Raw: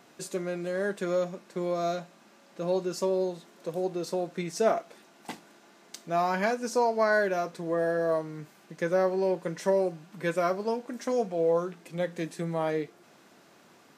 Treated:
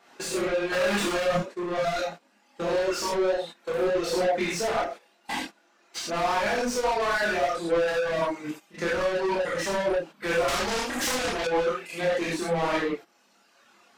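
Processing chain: 0.72–1.31 sample leveller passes 5; non-linear reverb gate 0.14 s flat, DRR -6.5 dB; reverb removal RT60 1.9 s; limiter -14.5 dBFS, peak gain reduction 10.5 dB; overdrive pedal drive 25 dB, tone 4000 Hz, clips at -14.5 dBFS; chorus voices 6, 0.98 Hz, delay 27 ms, depth 3.3 ms; gate -35 dBFS, range -13 dB; 10.48–11.47 spectral compressor 2:1; gain -2.5 dB

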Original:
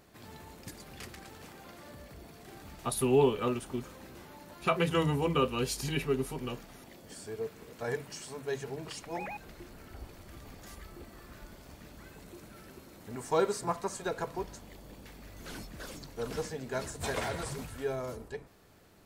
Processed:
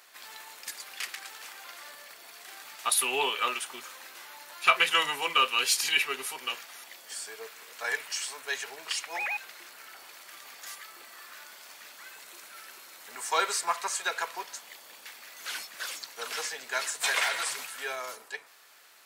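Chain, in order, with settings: HPF 1300 Hz 12 dB/oct; dynamic EQ 2500 Hz, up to +4 dB, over -52 dBFS, Q 1.1; in parallel at -10 dB: soft clip -27.5 dBFS, distortion -13 dB; on the sum: gain +8 dB

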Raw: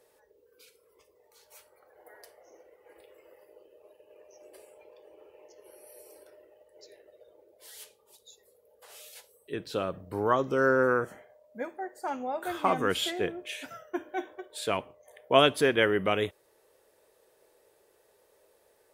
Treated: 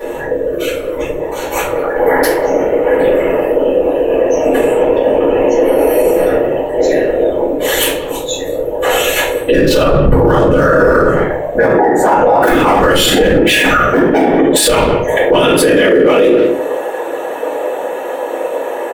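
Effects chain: Wiener smoothing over 9 samples; high shelf 8000 Hz +9.5 dB; notches 50/100/150/200/250/300/350/400/450/500 Hz; comb 2.3 ms, depth 76%; compressor 8:1, threshold -39 dBFS, peak gain reduction 22.5 dB; high-pass sweep 80 Hz -> 650 Hz, 14.32–16.77; whisperiser; speakerphone echo 0.19 s, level -17 dB; shoebox room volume 45 m³, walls mixed, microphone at 2.4 m; maximiser +30.5 dB; gain -1 dB

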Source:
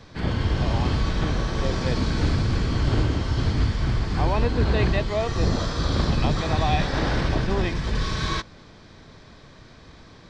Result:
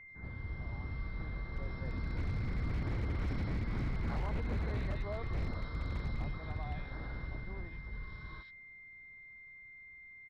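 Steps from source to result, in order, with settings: Doppler pass-by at 3.89, 7 m/s, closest 1.9 m; compressor 20:1, threshold -31 dBFS, peak gain reduction 13 dB; rippled Chebyshev low-pass 5500 Hz, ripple 9 dB; low shelf 150 Hz +11 dB; bands offset in time lows, highs 80 ms, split 2000 Hz; whine 2100 Hz -51 dBFS; high shelf 2600 Hz -11 dB; wavefolder -34 dBFS; gain +4.5 dB

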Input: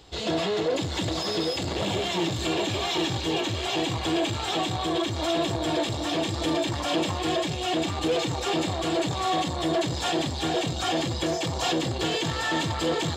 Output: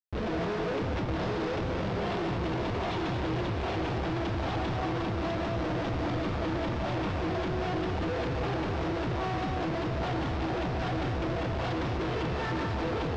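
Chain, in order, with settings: Schmitt trigger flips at -28.5 dBFS; high shelf 3000 Hz -10.5 dB; non-linear reverb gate 0.26 s rising, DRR 2 dB; hard clip -23 dBFS, distortion -15 dB; LPF 5500 Hz 24 dB/oct; gain -4 dB

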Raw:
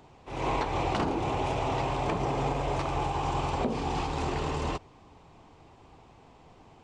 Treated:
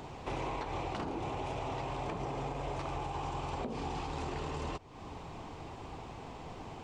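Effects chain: compressor 10:1, threshold -44 dBFS, peak gain reduction 19.5 dB; gain +9 dB

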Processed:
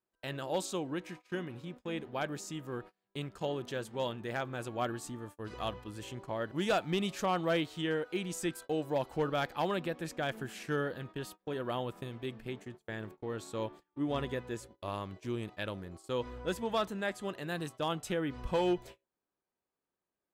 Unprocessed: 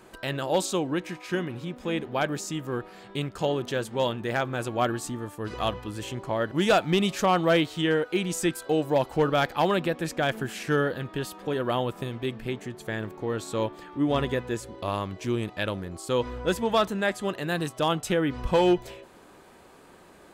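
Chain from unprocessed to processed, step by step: gate -38 dBFS, range -31 dB; gain -9 dB

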